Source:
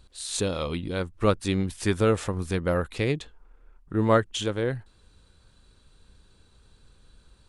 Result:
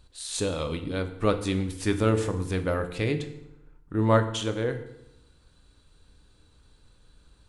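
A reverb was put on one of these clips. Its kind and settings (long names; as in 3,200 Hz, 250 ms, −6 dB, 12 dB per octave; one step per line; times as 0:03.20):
feedback delay network reverb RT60 0.86 s, low-frequency decay 1.2×, high-frequency decay 0.8×, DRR 7 dB
level −2 dB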